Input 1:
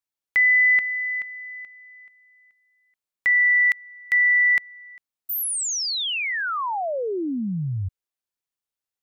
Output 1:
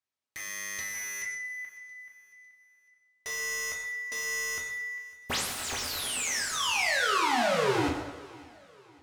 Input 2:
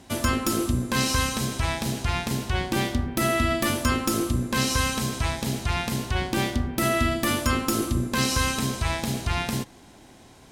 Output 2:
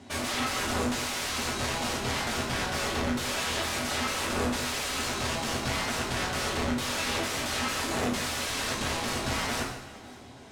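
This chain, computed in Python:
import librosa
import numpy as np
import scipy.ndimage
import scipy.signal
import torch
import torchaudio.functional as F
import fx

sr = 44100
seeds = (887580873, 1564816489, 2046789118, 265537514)

y = scipy.signal.sosfilt(scipy.signal.butter(4, 76.0, 'highpass', fs=sr, output='sos'), x)
y = fx.dynamic_eq(y, sr, hz=1400.0, q=4.1, threshold_db=-38.0, ratio=6.0, max_db=5)
y = (np.mod(10.0 ** (25.0 / 20.0) * y + 1.0, 2.0) - 1.0) / 10.0 ** (25.0 / 20.0)
y = fx.air_absorb(y, sr, metres=57.0)
y = fx.echo_feedback(y, sr, ms=552, feedback_pct=41, wet_db=-22.0)
y = fx.rev_fdn(y, sr, rt60_s=1.1, lf_ratio=0.85, hf_ratio=0.8, size_ms=73.0, drr_db=-2.0)
y = y * 10.0 ** (-1.5 / 20.0)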